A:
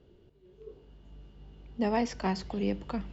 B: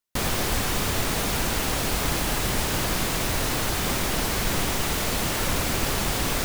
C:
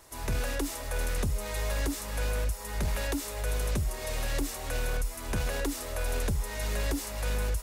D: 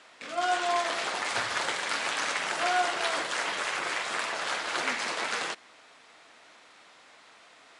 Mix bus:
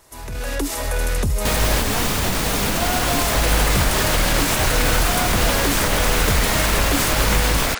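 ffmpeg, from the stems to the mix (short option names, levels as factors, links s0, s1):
-filter_complex "[0:a]volume=0.211,asplit=2[s0][s1];[1:a]bandreject=f=380:w=12,alimiter=limit=0.106:level=0:latency=1:release=163,adelay=1300,volume=0.708[s2];[2:a]alimiter=level_in=1.68:limit=0.0631:level=0:latency=1:release=28,volume=0.596,volume=1.33[s3];[3:a]acompressor=threshold=0.0282:ratio=6,adelay=2450,volume=0.631[s4];[s1]apad=whole_len=336324[s5];[s3][s5]sidechaincompress=threshold=0.00178:ratio=8:attack=16:release=390[s6];[s0][s2][s6][s4]amix=inputs=4:normalize=0,dynaudnorm=f=310:g=3:m=3.98"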